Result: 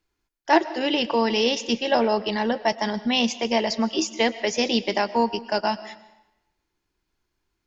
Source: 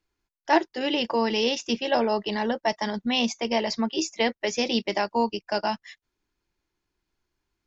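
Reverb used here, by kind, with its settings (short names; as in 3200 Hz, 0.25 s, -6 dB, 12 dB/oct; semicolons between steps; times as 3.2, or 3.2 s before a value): digital reverb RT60 0.96 s, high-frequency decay 0.9×, pre-delay 80 ms, DRR 15.5 dB; gain +2.5 dB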